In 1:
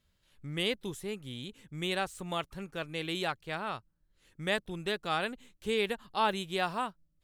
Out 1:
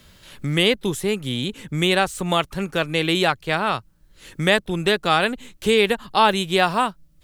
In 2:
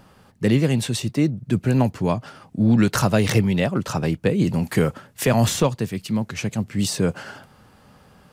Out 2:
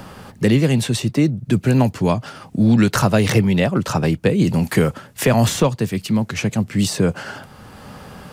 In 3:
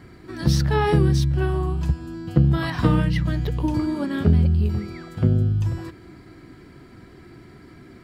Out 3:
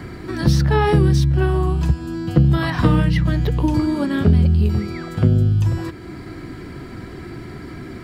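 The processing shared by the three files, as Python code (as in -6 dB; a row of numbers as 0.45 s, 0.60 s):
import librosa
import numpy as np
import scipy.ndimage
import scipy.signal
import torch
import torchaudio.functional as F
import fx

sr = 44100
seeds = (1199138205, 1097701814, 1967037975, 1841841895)

y = fx.band_squash(x, sr, depth_pct=40)
y = y * 10.0 ** (-3 / 20.0) / np.max(np.abs(y))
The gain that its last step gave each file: +13.5 dB, +3.5 dB, +4.0 dB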